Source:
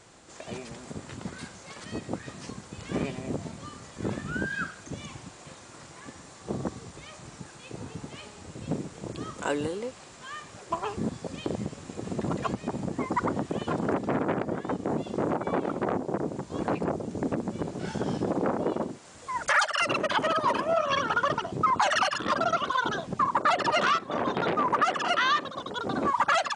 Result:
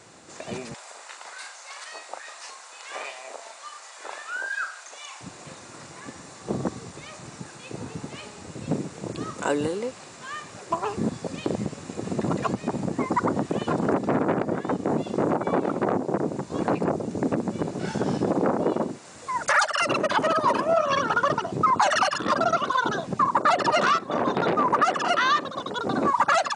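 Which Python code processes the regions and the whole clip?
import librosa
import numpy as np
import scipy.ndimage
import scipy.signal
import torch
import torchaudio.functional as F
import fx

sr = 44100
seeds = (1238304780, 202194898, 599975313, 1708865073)

y = fx.chain(x, sr, fx.highpass(hz=690.0, slope=24),
    fx.doubler(ms=38.0, db=-7.5), at=(0.74, 5.21))
y = scipy.signal.sosfilt(scipy.signal.butter(2, 100.0, 'highpass', fs=sr, output='sos'), y)
y = fx.notch(y, sr, hz=3200.0, q=14.0)
y = fx.dynamic_eq(y, sr, hz=2400.0, q=1.0, threshold_db=-38.0, ratio=4.0, max_db=-4)
y = F.gain(torch.from_numpy(y), 4.5).numpy()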